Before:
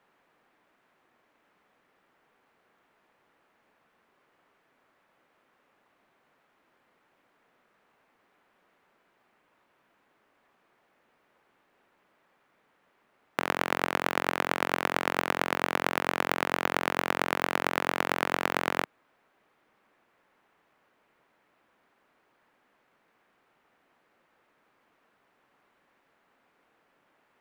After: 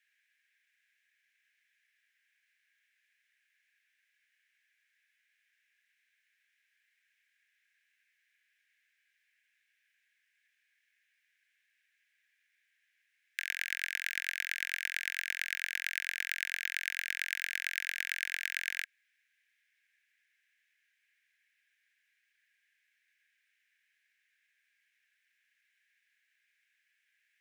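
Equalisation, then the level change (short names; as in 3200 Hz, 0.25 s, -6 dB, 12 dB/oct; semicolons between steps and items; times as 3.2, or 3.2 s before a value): rippled Chebyshev high-pass 1600 Hz, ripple 3 dB; bell 4500 Hz -4 dB 0.23 oct; 0.0 dB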